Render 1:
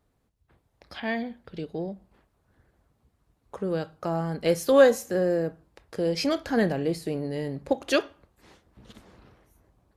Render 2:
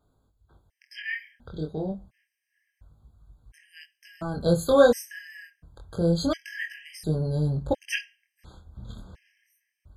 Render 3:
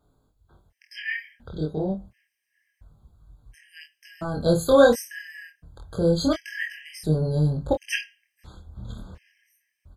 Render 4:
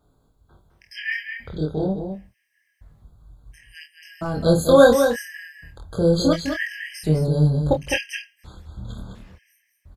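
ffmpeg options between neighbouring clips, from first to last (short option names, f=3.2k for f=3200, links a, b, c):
-af "flanger=delay=19:depth=7.1:speed=0.28,asubboost=boost=6:cutoff=130,afftfilt=real='re*gt(sin(2*PI*0.71*pts/sr)*(1-2*mod(floor(b*sr/1024/1600),2)),0)':imag='im*gt(sin(2*PI*0.71*pts/sr)*(1-2*mod(floor(b*sr/1024/1600),2)),0)':win_size=1024:overlap=0.75,volume=5.5dB"
-filter_complex "[0:a]asplit=2[a][b];[b]adelay=26,volume=-7dB[c];[a][c]amix=inputs=2:normalize=0,volume=2dB"
-af "aecho=1:1:207:0.447,volume=3dB"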